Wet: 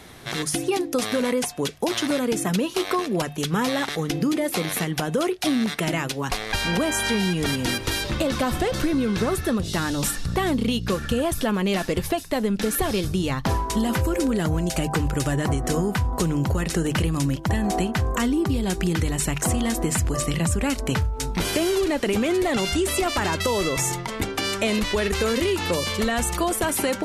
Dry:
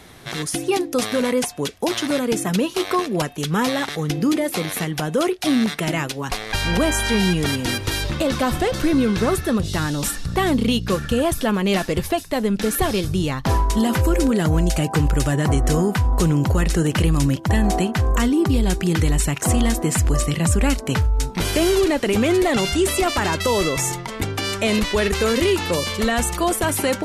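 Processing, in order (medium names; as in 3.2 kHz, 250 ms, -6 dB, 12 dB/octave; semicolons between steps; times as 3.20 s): hum notches 50/100/150 Hz; compression, threshold -19 dBFS, peak gain reduction 6 dB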